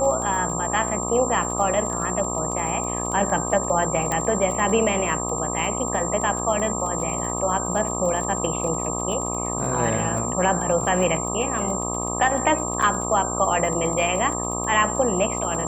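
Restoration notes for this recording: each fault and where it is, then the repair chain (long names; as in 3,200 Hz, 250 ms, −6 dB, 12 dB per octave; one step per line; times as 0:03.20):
mains buzz 60 Hz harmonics 21 −29 dBFS
surface crackle 25 per second −29 dBFS
whistle 7,400 Hz −28 dBFS
0:04.12: click −11 dBFS
0:12.82: drop-out 5 ms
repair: click removal
hum removal 60 Hz, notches 21
notch filter 7,400 Hz, Q 30
repair the gap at 0:12.82, 5 ms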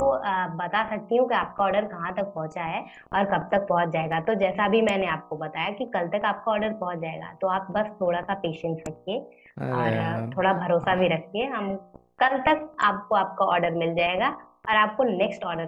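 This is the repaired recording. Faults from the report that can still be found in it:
0:04.12: click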